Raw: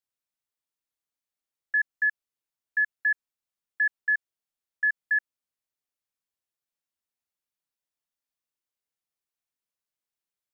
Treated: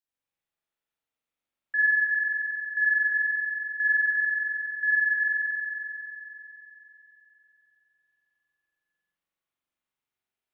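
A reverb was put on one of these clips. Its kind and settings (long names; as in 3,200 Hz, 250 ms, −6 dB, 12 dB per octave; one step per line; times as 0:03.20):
spring reverb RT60 3.5 s, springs 43 ms, chirp 80 ms, DRR −9.5 dB
level −4.5 dB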